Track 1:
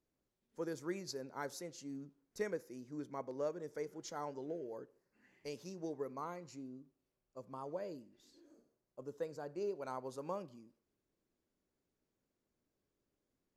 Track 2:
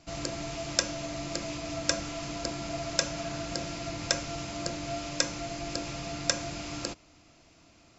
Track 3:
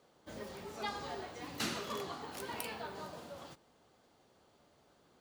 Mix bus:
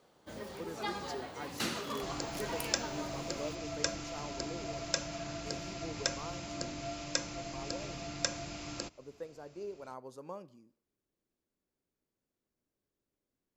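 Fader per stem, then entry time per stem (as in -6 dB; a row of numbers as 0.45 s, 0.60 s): -3.0 dB, -5.5 dB, +1.5 dB; 0.00 s, 1.95 s, 0.00 s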